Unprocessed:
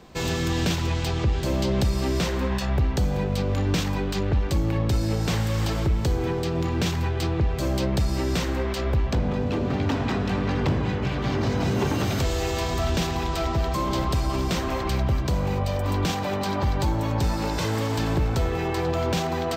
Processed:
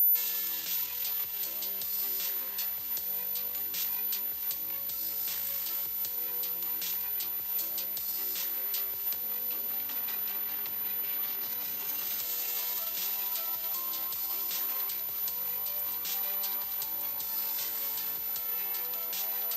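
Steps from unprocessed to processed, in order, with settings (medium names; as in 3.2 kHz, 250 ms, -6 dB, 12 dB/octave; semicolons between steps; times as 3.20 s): whistle 14 kHz -33 dBFS; peak limiter -26.5 dBFS, peak gain reduction 13 dB; differentiator; echo that smears into a reverb 710 ms, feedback 72%, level -11 dB; trim +8 dB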